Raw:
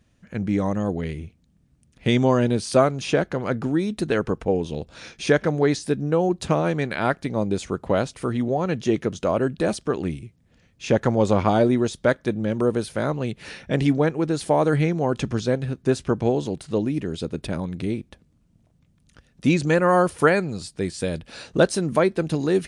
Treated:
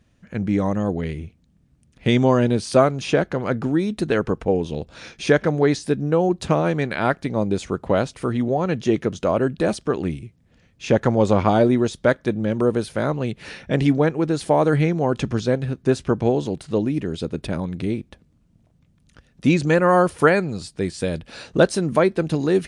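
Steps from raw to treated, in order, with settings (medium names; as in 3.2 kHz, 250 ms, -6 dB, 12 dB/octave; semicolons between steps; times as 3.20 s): treble shelf 6.1 kHz -4.5 dB; trim +2 dB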